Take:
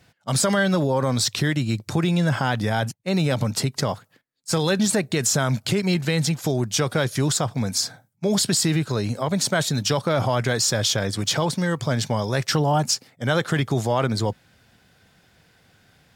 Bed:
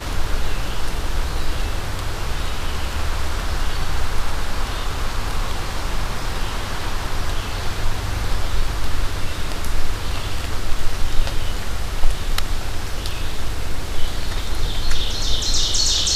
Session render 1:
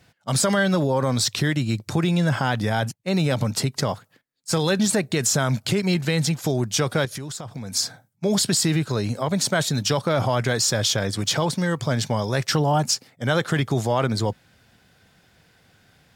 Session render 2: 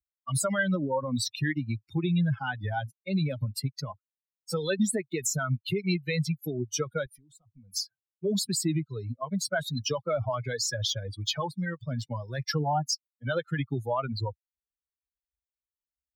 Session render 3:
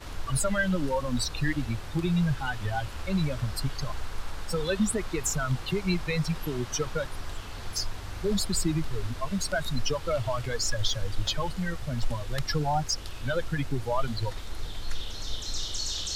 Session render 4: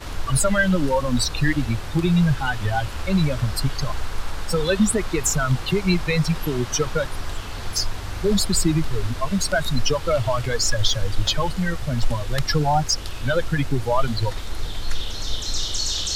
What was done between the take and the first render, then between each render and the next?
0:07.05–0:07.73: downward compressor 10 to 1, threshold −29 dBFS
spectral dynamics exaggerated over time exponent 3; multiband upward and downward compressor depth 40%
mix in bed −14 dB
level +7.5 dB

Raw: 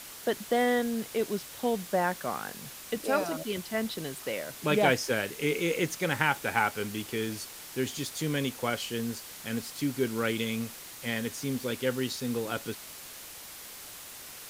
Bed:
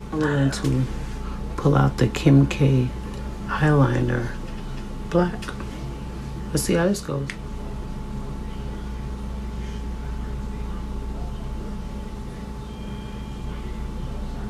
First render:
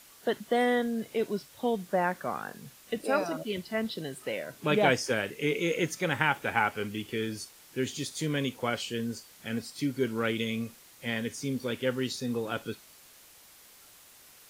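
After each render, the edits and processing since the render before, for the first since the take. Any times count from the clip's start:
noise reduction from a noise print 10 dB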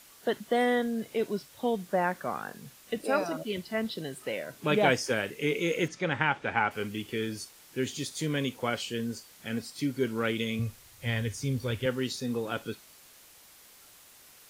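0:05.88–0:06.71: high-frequency loss of the air 110 metres
0:10.59–0:11.86: low shelf with overshoot 140 Hz +12.5 dB, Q 1.5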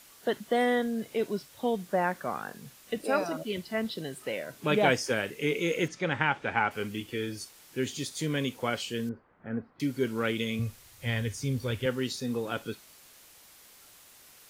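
0:07.00–0:07.41: notch comb filter 200 Hz
0:09.09–0:09.80: low-pass filter 1,500 Hz 24 dB per octave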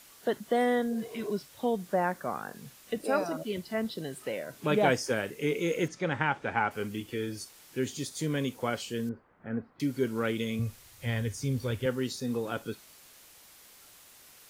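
0:00.94–0:01.27: healed spectral selection 360–1,300 Hz both
dynamic equaliser 2,800 Hz, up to −5 dB, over −46 dBFS, Q 0.93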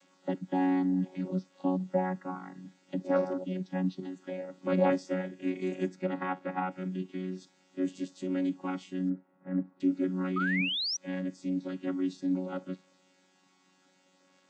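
channel vocoder with a chord as carrier bare fifth, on F#3
0:10.36–0:10.97: sound drawn into the spectrogram rise 1,200–6,000 Hz −32 dBFS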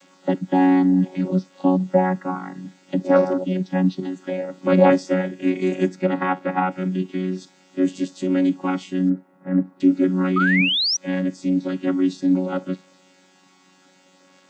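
level +11.5 dB

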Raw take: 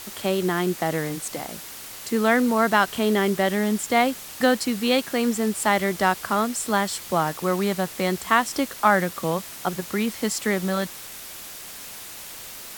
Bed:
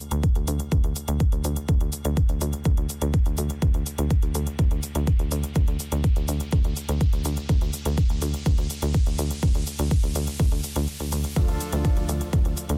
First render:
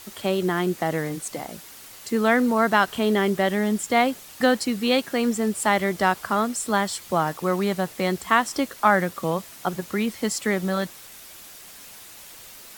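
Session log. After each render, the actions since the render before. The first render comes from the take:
broadband denoise 6 dB, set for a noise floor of −39 dBFS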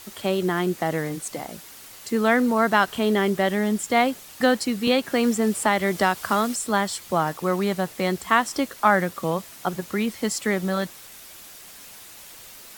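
0:04.87–0:06.56: multiband upward and downward compressor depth 70%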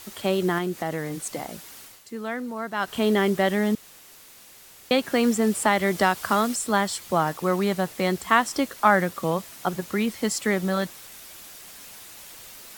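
0:00.58–0:01.23: downward compressor 1.5 to 1, threshold −30 dBFS
0:01.80–0:02.99: duck −11.5 dB, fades 0.24 s
0:03.75–0:04.91: fill with room tone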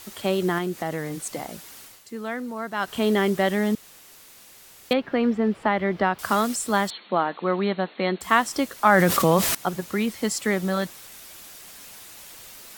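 0:04.93–0:06.19: high-frequency loss of the air 350 metres
0:06.90–0:08.21: linear-phase brick-wall band-pass 170–4,400 Hz
0:08.86–0:09.55: envelope flattener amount 70%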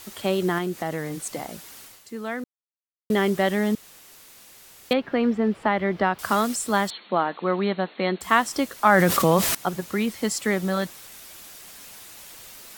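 0:02.44–0:03.10: silence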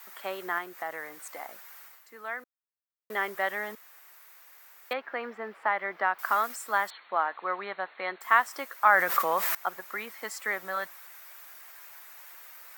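high-pass filter 960 Hz 12 dB per octave
flat-topped bell 5,600 Hz −12 dB 2.4 octaves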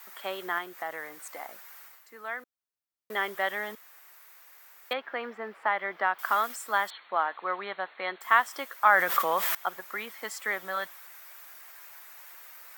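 dynamic equaliser 3,300 Hz, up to +8 dB, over −59 dBFS, Q 6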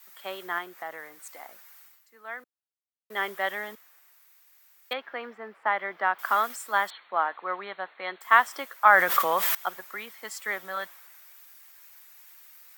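multiband upward and downward expander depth 40%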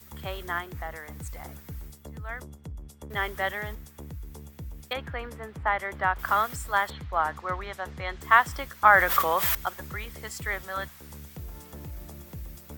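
mix in bed −19 dB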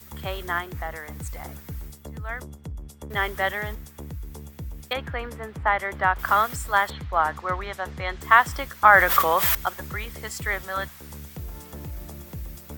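level +4 dB
brickwall limiter −2 dBFS, peak gain reduction 1.5 dB

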